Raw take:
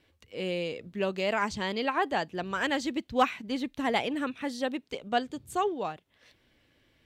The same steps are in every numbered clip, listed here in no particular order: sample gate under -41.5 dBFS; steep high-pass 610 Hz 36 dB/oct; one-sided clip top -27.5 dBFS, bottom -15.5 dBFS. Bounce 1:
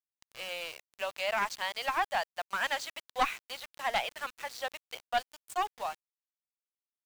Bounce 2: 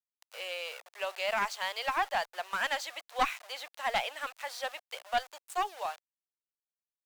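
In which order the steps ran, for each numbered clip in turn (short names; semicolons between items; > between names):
steep high-pass > one-sided clip > sample gate; sample gate > steep high-pass > one-sided clip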